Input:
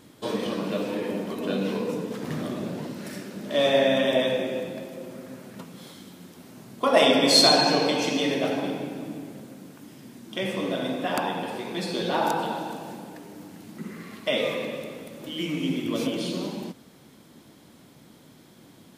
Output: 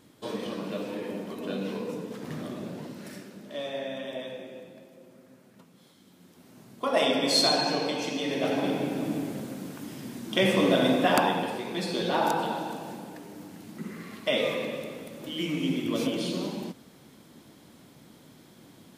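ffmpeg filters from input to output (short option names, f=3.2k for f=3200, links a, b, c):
-af "volume=14.5dB,afade=t=out:st=3.11:d=0.54:silence=0.375837,afade=t=in:st=5.97:d=0.64:silence=0.398107,afade=t=in:st=8.25:d=0.94:silence=0.251189,afade=t=out:st=10.96:d=0.64:silence=0.446684"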